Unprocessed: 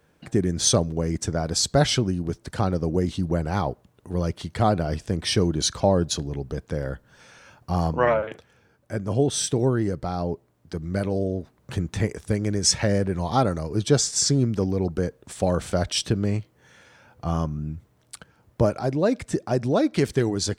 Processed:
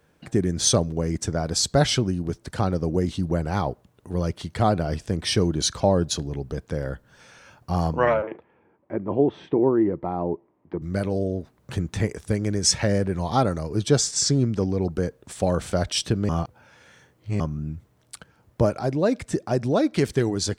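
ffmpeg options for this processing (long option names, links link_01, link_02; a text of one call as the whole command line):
ffmpeg -i in.wav -filter_complex "[0:a]asettb=1/sr,asplit=3[link_01][link_02][link_03];[link_01]atrim=end=8.224[link_04];[link_02]atrim=start=8.22:end=10.82,asetpts=PTS-STARTPTS,afade=type=in:duration=0.004:curve=qsin,afade=type=out:start_time=2.596:duration=0.004:curve=qsin,highpass=110,equalizer=frequency=120:width_type=q:width=4:gain=-10,equalizer=frequency=340:width_type=q:width=4:gain=8,equalizer=frequency=950:width_type=q:width=4:gain=7,equalizer=frequency=1500:width_type=q:width=4:gain=-9,lowpass=frequency=2200:width=0.5412,lowpass=frequency=2200:width=1.3066[link_05];[link_03]atrim=start=10.816[link_06];[link_04][link_05]acrossfade=duration=0.004:curve1=hsin:curve2=qsin[link_07];[link_07][link_06]acrossfade=duration=0.004:curve1=qsin:curve2=hsin,asettb=1/sr,asplit=3[link_08][link_09][link_10];[link_08]atrim=end=14.114[link_11];[link_09]atrim=start=14.11:end=14.81,asetpts=PTS-STARTPTS,afade=type=in:duration=0.004:curve=qsin,afade=type=out:start_time=0.696:duration=0.004:curve=qsin,lowpass=9300[link_12];[link_10]atrim=start=14.806[link_13];[link_11][link_12]acrossfade=duration=0.004:curve1=hsin:curve2=qsin[link_14];[link_14][link_13]acrossfade=duration=0.004:curve1=qsin:curve2=hsin,asplit=3[link_15][link_16][link_17];[link_15]atrim=end=16.292[link_18];[link_16]atrim=start=16.288:end=17.402,asetpts=PTS-STARTPTS,areverse[link_19];[link_17]atrim=start=17.398[link_20];[link_18][link_19]acrossfade=duration=0.004:curve1=hsin:curve2=hsin[link_21];[link_21][link_20]acrossfade=duration=0.004:curve1=hsin:curve2=hsin" out.wav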